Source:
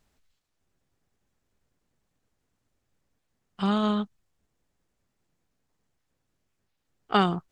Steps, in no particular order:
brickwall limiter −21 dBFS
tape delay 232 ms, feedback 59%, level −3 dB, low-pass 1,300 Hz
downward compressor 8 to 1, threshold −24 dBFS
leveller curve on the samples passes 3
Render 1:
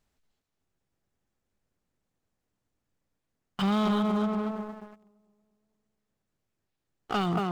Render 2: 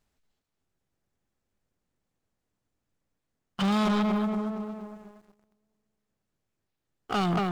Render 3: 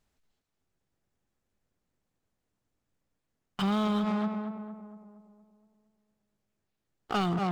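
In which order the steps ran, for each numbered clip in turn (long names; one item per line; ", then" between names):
downward compressor, then tape delay, then leveller curve on the samples, then brickwall limiter
downward compressor, then tape delay, then brickwall limiter, then leveller curve on the samples
leveller curve on the samples, then tape delay, then brickwall limiter, then downward compressor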